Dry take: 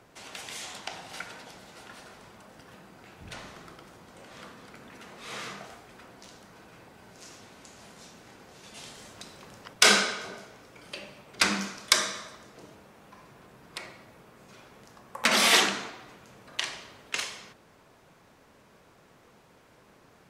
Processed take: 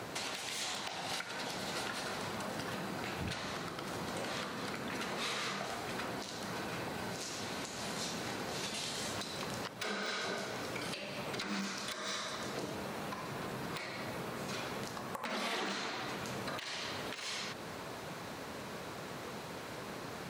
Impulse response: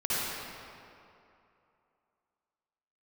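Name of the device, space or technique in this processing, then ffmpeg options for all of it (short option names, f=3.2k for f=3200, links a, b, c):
broadcast voice chain: -af "highpass=84,deesser=0.95,acompressor=threshold=-51dB:ratio=3,equalizer=f=4.1k:t=o:w=0.26:g=5,alimiter=level_in=17.5dB:limit=-24dB:level=0:latency=1:release=260,volume=-17.5dB,volume=14dB"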